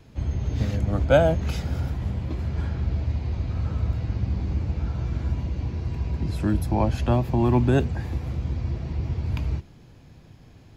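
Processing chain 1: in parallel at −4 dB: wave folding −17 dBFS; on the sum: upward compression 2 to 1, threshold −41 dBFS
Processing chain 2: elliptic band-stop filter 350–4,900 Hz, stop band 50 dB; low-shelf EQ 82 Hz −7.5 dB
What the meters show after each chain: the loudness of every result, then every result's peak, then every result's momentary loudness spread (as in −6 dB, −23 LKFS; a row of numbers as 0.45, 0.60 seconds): −22.5, −30.0 LKFS; −4.5, −11.5 dBFS; 8, 8 LU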